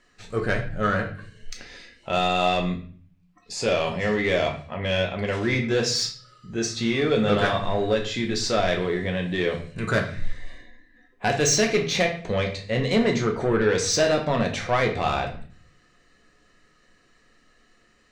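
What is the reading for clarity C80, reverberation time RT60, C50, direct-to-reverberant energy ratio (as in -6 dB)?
13.5 dB, 0.45 s, 9.0 dB, 1.5 dB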